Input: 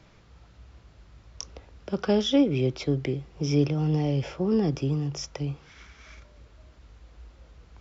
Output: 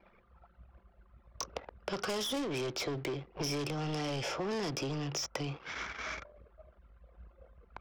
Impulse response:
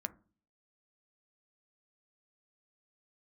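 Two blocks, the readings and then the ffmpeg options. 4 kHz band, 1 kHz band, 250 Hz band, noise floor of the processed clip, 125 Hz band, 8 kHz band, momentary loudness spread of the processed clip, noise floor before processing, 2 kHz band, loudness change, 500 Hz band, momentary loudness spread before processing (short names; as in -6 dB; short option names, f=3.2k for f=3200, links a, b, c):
-2.5 dB, -0.5 dB, -13.0 dB, -65 dBFS, -13.0 dB, n/a, 8 LU, -55 dBFS, +2.0 dB, -10.0 dB, -8.5 dB, 19 LU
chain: -filter_complex "[0:a]asplit=2[a][b];[b]highpass=f=720:p=1,volume=28dB,asoftclip=type=tanh:threshold=-11dB[c];[a][c]amix=inputs=2:normalize=0,lowpass=f=3.8k:p=1,volume=-6dB,anlmdn=10,acrossover=split=1700|5100[d][e][f];[d]acompressor=threshold=-32dB:ratio=4[g];[e]acompressor=threshold=-42dB:ratio=4[h];[f]acompressor=threshold=-34dB:ratio=4[i];[g][h][i]amix=inputs=3:normalize=0,volume=-4.5dB"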